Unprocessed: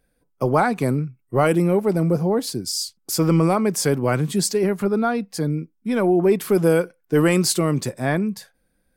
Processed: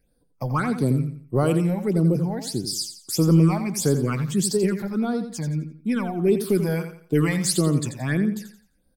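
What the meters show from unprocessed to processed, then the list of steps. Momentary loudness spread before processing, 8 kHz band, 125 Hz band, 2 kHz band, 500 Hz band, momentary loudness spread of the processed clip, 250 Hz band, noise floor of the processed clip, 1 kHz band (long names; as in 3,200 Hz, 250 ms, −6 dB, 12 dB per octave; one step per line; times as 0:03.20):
8 LU, −2.0 dB, +0.5 dB, −5.0 dB, −5.5 dB, 7 LU, −1.5 dB, −66 dBFS, −7.5 dB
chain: dynamic equaliser 750 Hz, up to −7 dB, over −33 dBFS, Q 1.2
all-pass phaser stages 8, 1.6 Hz, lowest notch 350–2,500 Hz
repeating echo 86 ms, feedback 32%, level −9.5 dB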